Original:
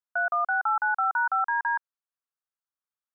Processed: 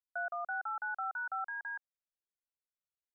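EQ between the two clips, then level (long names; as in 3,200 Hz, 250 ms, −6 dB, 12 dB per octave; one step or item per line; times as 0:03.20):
high-frequency loss of the air 400 metres
spectral tilt −1.5 dB per octave
phaser with its sweep stopped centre 1,000 Hz, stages 6
−7.0 dB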